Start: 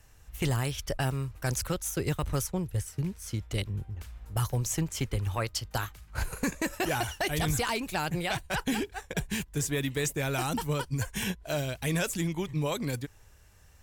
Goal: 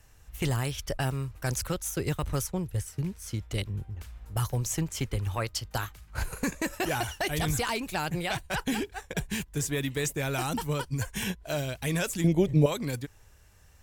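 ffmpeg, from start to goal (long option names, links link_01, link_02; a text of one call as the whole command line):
ffmpeg -i in.wav -filter_complex "[0:a]asettb=1/sr,asplit=3[link_01][link_02][link_03];[link_01]atrim=end=12.244[link_04];[link_02]atrim=start=12.24:end=12.66,asetpts=PTS-STARTPTS,afade=type=in:duration=0.004:curve=qsin,afade=type=out:start_time=0.416:duration=0.004:curve=qsin,lowshelf=frequency=790:width_type=q:width=3:gain=8[link_05];[link_03]atrim=start=12.656[link_06];[link_04][link_05]acrossfade=duration=0.004:curve1=hsin:curve2=qsin[link_07];[link_07][link_06]acrossfade=duration=0.004:curve1=qsin:curve2=hsin" out.wav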